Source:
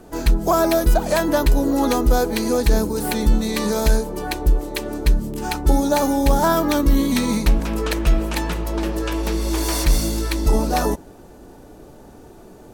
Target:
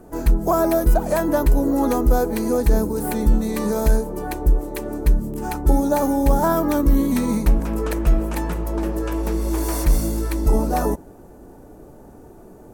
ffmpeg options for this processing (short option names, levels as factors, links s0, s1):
-af "equalizer=f=3700:w=0.69:g=-12"